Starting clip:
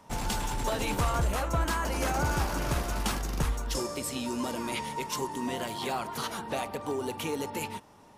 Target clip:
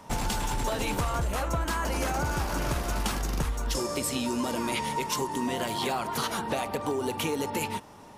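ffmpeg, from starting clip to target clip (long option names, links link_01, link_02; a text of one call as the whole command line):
ffmpeg -i in.wav -af "acompressor=threshold=-32dB:ratio=6,volume=6.5dB" out.wav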